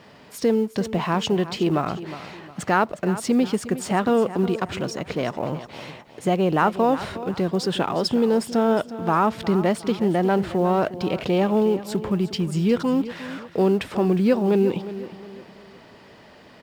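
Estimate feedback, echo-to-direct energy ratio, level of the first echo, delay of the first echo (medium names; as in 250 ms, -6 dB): 38%, -13.5 dB, -14.0 dB, 360 ms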